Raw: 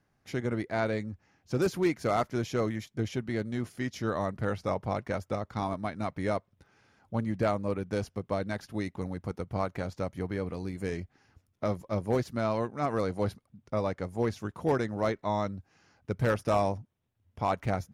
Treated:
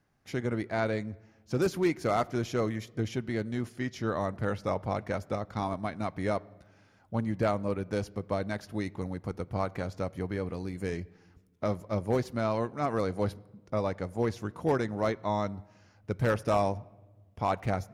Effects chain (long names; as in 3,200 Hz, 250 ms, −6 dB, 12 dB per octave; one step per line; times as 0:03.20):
0:03.70–0:04.19: high-shelf EQ 9,300 Hz −9 dB
on a send: convolution reverb RT60 1.2 s, pre-delay 12 ms, DRR 21.5 dB